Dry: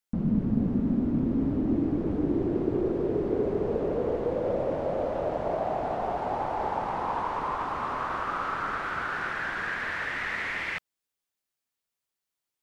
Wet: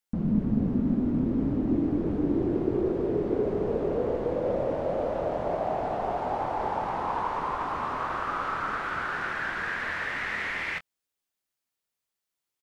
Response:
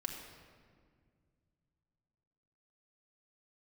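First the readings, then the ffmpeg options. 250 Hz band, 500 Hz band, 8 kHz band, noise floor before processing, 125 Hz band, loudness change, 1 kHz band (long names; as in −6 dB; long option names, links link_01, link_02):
+0.5 dB, +0.5 dB, can't be measured, below −85 dBFS, 0.0 dB, +0.5 dB, +0.5 dB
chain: -filter_complex "[0:a]asplit=2[link_01][link_02];[link_02]adelay=24,volume=-11dB[link_03];[link_01][link_03]amix=inputs=2:normalize=0"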